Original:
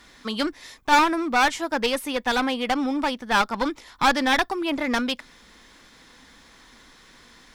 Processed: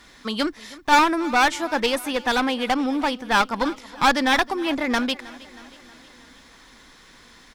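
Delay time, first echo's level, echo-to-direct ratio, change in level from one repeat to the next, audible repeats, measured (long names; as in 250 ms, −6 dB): 317 ms, −20.0 dB, −18.0 dB, −4.5 dB, 4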